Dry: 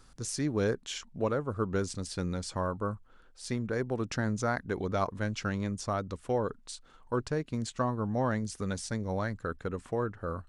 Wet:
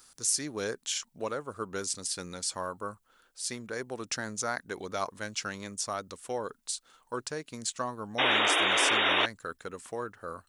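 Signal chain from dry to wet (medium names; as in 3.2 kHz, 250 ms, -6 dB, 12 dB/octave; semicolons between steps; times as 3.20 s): RIAA curve recording; painted sound noise, 8.18–9.26 s, 270–3800 Hz -24 dBFS; trim -1.5 dB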